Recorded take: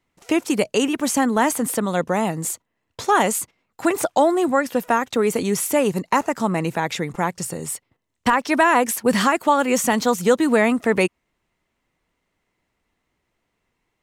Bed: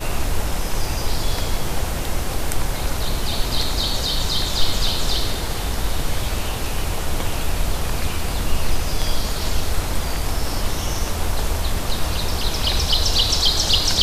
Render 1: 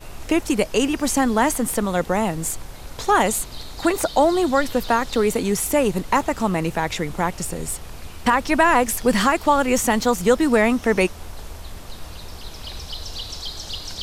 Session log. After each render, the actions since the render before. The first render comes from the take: add bed -14 dB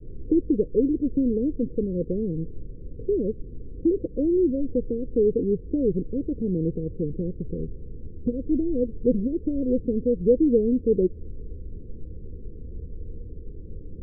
steep low-pass 500 Hz 96 dB/oct; dynamic EQ 210 Hz, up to -5 dB, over -35 dBFS, Q 3.9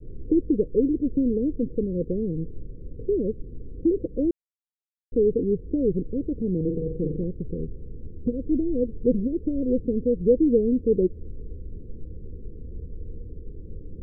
4.31–5.12 mute; 6.56–7.24 flutter echo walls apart 7.8 m, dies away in 0.54 s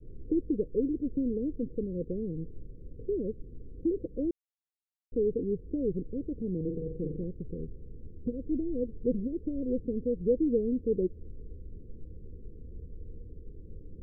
gain -7.5 dB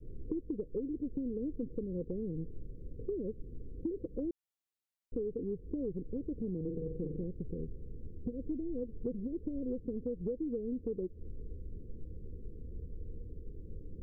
compressor 10:1, threshold -33 dBFS, peak gain reduction 13 dB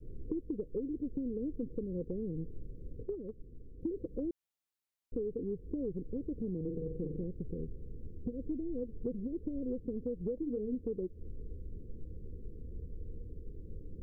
3.03–3.82 gate -36 dBFS, range -6 dB; 10.35–10.75 doubler 24 ms -7 dB

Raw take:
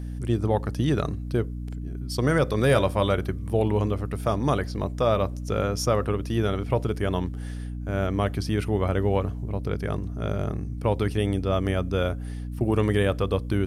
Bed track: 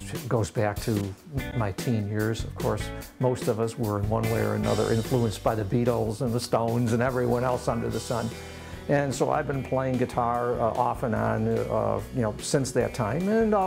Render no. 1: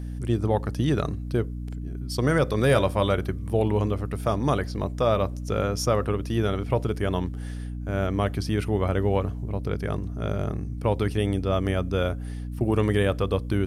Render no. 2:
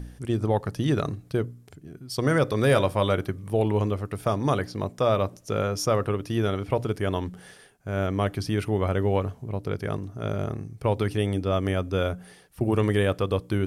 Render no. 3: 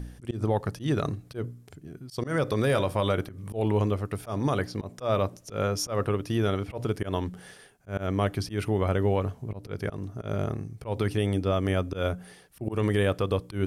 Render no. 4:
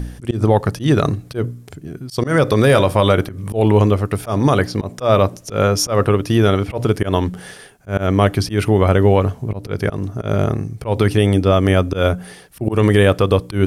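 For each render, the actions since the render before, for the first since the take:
nothing audible
de-hum 60 Hz, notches 5
limiter -15.5 dBFS, peak gain reduction 5.5 dB; auto swell 0.117 s
gain +12 dB

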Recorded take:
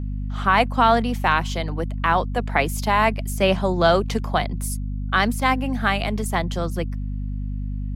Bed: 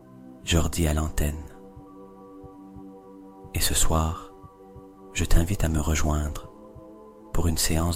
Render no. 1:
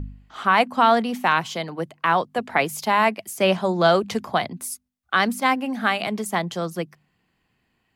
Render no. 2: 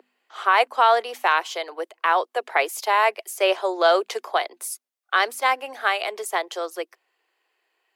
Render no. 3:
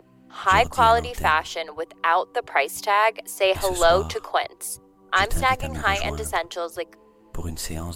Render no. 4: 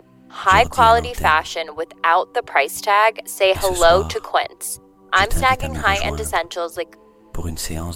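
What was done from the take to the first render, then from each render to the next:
de-hum 50 Hz, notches 5
steep high-pass 370 Hz 48 dB/oct
add bed -7 dB
gain +4.5 dB; limiter -1 dBFS, peak gain reduction 0.5 dB

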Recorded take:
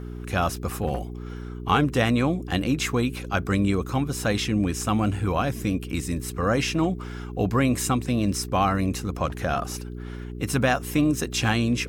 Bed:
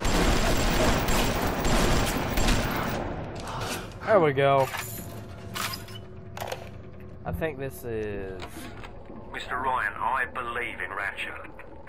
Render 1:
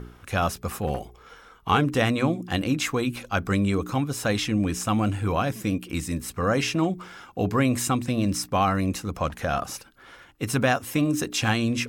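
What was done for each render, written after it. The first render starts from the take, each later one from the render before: de-hum 60 Hz, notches 7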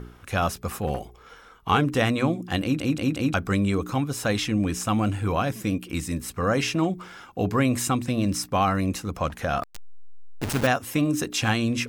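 2.62 stutter in place 0.18 s, 4 plays; 9.63–10.67 level-crossing sampler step -23.5 dBFS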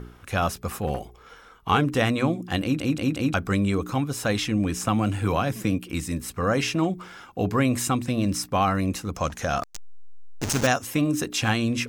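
4.83–5.79 three-band squash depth 70%; 9.16–10.87 bell 6300 Hz +11 dB 0.7 oct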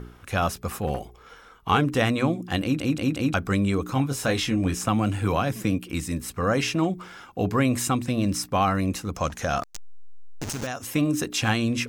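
3.94–4.75 doubler 22 ms -6.5 dB; 9.62–10.84 compressor, threshold -27 dBFS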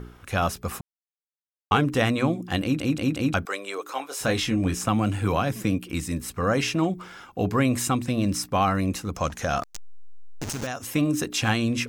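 0.81–1.71 mute; 3.45–4.21 HPF 450 Hz 24 dB/oct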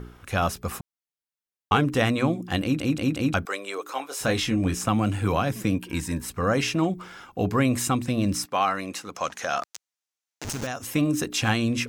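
5.75–6.26 small resonant body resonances 940/1600 Hz, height 16 dB; 8.45–10.45 weighting filter A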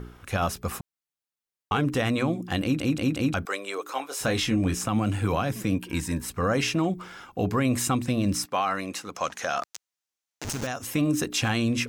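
limiter -15 dBFS, peak gain reduction 6 dB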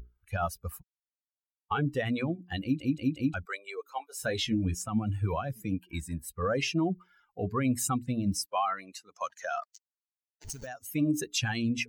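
per-bin expansion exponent 2; reverse; upward compressor, threshold -51 dBFS; reverse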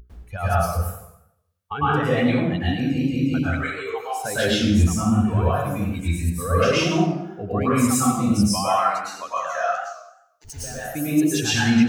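plate-style reverb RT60 0.82 s, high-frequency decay 0.75×, pre-delay 95 ms, DRR -9.5 dB; warbling echo 92 ms, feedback 32%, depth 165 cents, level -10.5 dB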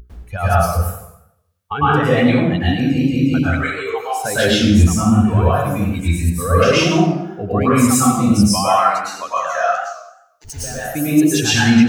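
gain +6 dB; limiter -2 dBFS, peak gain reduction 2 dB

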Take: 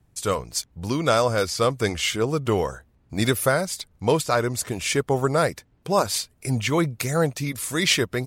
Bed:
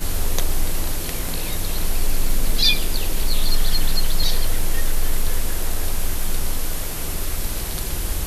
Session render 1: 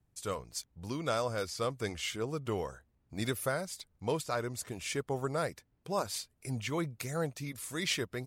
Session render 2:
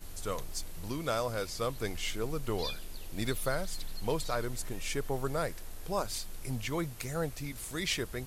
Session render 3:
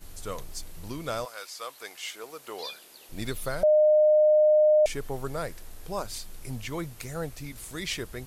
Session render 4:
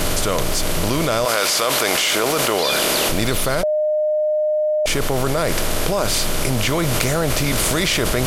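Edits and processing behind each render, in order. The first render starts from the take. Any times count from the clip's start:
gain -12.5 dB
add bed -22 dB
1.24–3.09 HPF 1000 Hz -> 380 Hz; 3.63–4.86 bleep 610 Hz -16 dBFS
per-bin compression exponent 0.6; fast leveller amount 100%

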